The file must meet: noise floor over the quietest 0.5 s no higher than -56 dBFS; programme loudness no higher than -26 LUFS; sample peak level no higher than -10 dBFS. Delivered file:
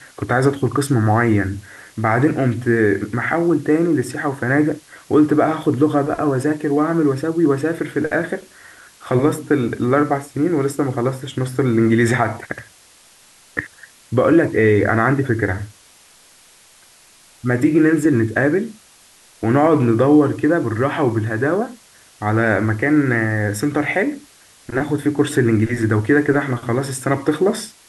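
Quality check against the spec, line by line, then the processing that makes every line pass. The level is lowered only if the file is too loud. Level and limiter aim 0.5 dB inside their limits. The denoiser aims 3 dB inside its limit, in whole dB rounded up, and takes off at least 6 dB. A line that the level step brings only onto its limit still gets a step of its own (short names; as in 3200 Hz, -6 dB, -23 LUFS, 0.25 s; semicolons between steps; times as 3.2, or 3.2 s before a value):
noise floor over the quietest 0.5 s -49 dBFS: fail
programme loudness -18.0 LUFS: fail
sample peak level -4.5 dBFS: fail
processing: gain -8.5 dB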